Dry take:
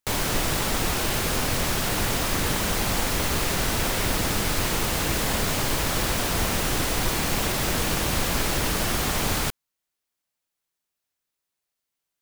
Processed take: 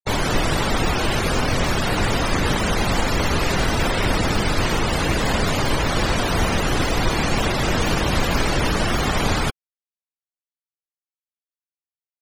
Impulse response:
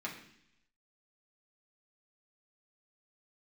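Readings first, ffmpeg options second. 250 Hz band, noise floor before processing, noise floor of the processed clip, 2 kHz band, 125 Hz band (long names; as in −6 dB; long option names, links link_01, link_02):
+6.0 dB, −84 dBFS, below −85 dBFS, +4.5 dB, +6.0 dB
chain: -af "afftfilt=real='re*gte(hypot(re,im),0.0447)':imag='im*gte(hypot(re,im),0.0447)':win_size=1024:overlap=0.75,aeval=exprs='0.251*(cos(1*acos(clip(val(0)/0.251,-1,1)))-cos(1*PI/2))+0.00251*(cos(8*acos(clip(val(0)/0.251,-1,1)))-cos(8*PI/2))':channel_layout=same,volume=6dB"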